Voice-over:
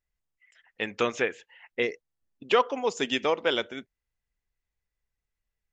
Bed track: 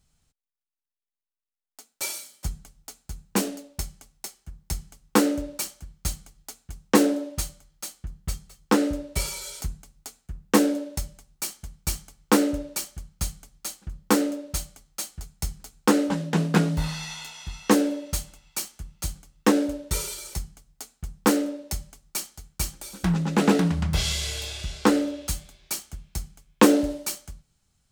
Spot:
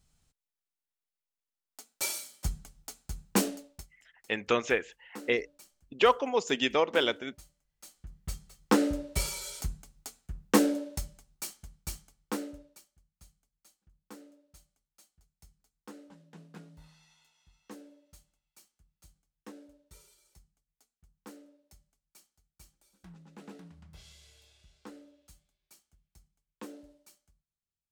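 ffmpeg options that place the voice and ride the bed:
ffmpeg -i stem1.wav -i stem2.wav -filter_complex "[0:a]adelay=3500,volume=-0.5dB[link_01];[1:a]volume=19.5dB,afade=type=out:start_time=3.41:duration=0.46:silence=0.0707946,afade=type=in:start_time=7.66:duration=1.06:silence=0.0841395,afade=type=out:start_time=10.44:duration=2.4:silence=0.0530884[link_02];[link_01][link_02]amix=inputs=2:normalize=0" out.wav

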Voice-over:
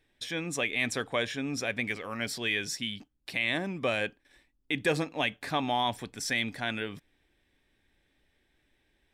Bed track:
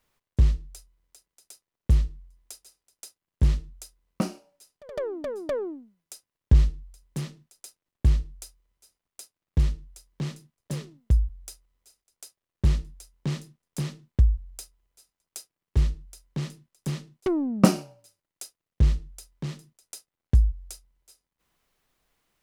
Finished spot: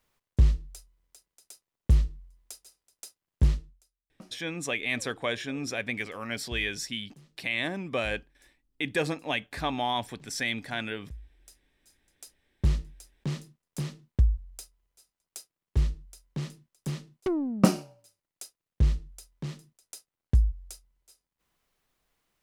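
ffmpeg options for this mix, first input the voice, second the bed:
ffmpeg -i stem1.wav -i stem2.wav -filter_complex "[0:a]adelay=4100,volume=-0.5dB[link_01];[1:a]volume=19dB,afade=type=out:start_time=3.43:duration=0.39:silence=0.0794328,afade=type=in:start_time=11.28:duration=0.76:silence=0.1[link_02];[link_01][link_02]amix=inputs=2:normalize=0" out.wav

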